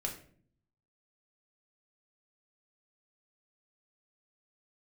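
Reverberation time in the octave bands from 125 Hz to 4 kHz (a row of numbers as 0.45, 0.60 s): 1.0, 0.85, 0.60, 0.45, 0.45, 0.35 s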